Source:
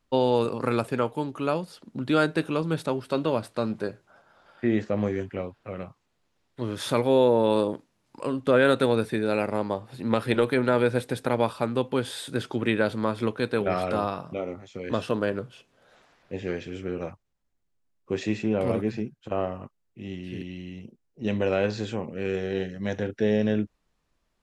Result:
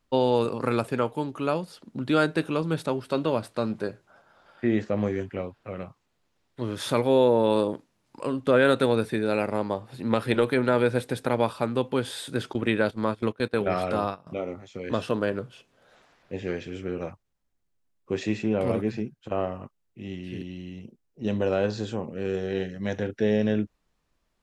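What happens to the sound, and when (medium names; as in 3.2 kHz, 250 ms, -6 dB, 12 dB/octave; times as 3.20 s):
12.53–14.27 s: gate -31 dBFS, range -17 dB
20.36–22.48 s: dynamic bell 2.2 kHz, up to -8 dB, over -55 dBFS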